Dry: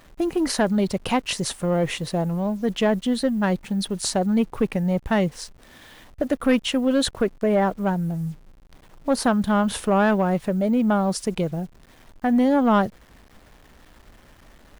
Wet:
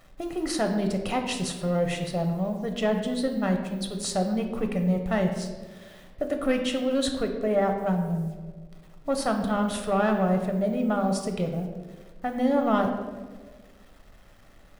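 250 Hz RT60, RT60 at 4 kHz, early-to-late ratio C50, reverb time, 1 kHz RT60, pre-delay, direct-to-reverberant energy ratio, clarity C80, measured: 1.8 s, 0.85 s, 6.5 dB, 1.5 s, 1.2 s, 5 ms, 4.0 dB, 8.5 dB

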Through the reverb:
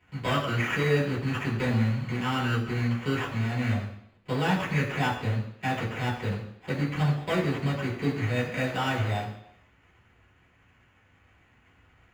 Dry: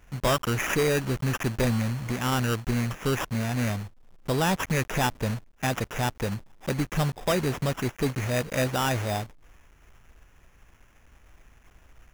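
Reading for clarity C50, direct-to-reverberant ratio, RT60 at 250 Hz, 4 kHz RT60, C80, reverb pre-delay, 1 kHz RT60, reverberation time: 7.0 dB, -5.5 dB, 0.75 s, 0.75 s, 9.0 dB, 3 ms, 0.70 s, 0.70 s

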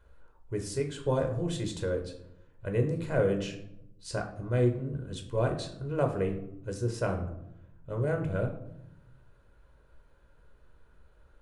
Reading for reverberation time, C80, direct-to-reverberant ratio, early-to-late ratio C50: 0.85 s, 12.5 dB, 3.5 dB, 9.5 dB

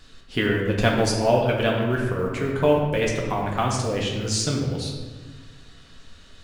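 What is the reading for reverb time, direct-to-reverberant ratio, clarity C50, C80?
1.4 s, -2.0 dB, 2.5 dB, 4.5 dB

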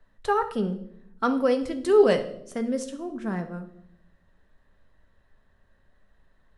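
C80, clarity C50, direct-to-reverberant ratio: 15.5 dB, 12.0 dB, 6.5 dB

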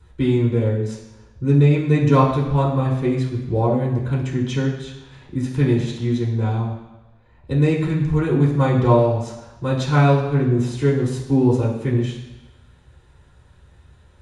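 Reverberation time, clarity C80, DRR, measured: 1.1 s, 7.5 dB, -5.0 dB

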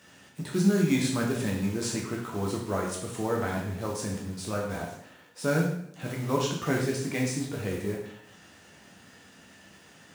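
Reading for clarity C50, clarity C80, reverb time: 4.0 dB, 7.0 dB, 0.70 s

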